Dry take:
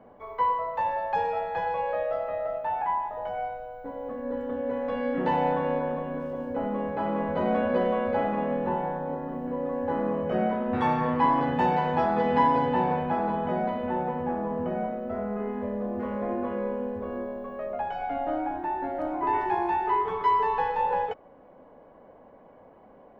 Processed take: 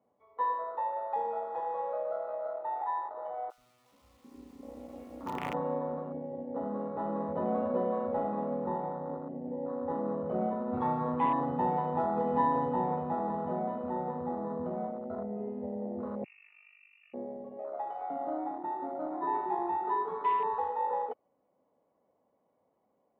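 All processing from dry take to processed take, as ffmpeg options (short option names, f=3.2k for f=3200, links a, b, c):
-filter_complex "[0:a]asettb=1/sr,asplit=3[a][b][c];[a]atrim=end=3.504[d];[b]atrim=start=3.5:end=5.54,asetpts=PTS-STARTPTS,afade=t=in:d=0.004:c=qsin,afade=t=out:st=2.036:d=0.004:c=qsin,highpass=f=160:p=1,acrusher=bits=4:dc=4:mix=0:aa=0.000001,acrossover=split=600[e][f];[e]adelay=80[g];[g][f]amix=inputs=2:normalize=0,atrim=end_sample=89964[h];[c]atrim=start=5.536[i];[d][h]acrossfade=d=0.004:c1=hsin:c2=qsin[j];[j][i]acrossfade=d=0.004:c1=qsin:c2=hsin,asettb=1/sr,asplit=3[k][l][m];[k]atrim=end=16.244[n];[l]atrim=start=16.24:end=17.14,asetpts=PTS-STARTPTS,afade=t=in:d=0.004:c=qsin,afade=t=out:st=0.896:d=0.004:c=qsin,equalizer=f=560:t=o:w=2.1:g=-6,tremolo=f=49:d=0.857,lowpass=f=2.5k:t=q:w=0.5098,lowpass=f=2.5k:t=q:w=0.6013,lowpass=f=2.5k:t=q:w=0.9,lowpass=f=2.5k:t=q:w=2.563,afreqshift=-2900[o];[m]atrim=start=17.136[p];[n][o]acrossfade=d=0.004:c1=hsin:c2=qsin[q];[q][p]acrossfade=d=0.004:c1=qsin:c2=hsin,afwtdn=0.0316,highpass=87,bandreject=f=1.6k:w=5.1,volume=-5.5dB"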